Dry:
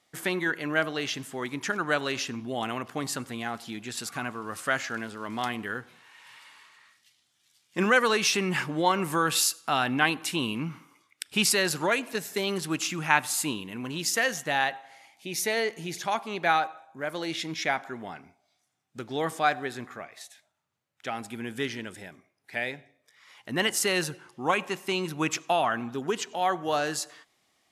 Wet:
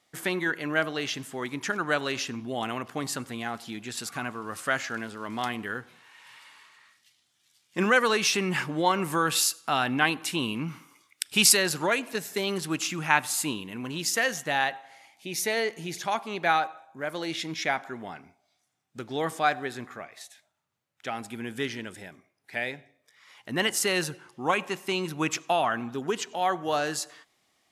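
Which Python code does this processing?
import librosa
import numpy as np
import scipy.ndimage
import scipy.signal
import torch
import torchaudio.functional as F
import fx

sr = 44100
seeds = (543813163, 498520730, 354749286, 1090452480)

y = fx.high_shelf(x, sr, hz=3100.0, db=7.5, at=(10.68, 11.57))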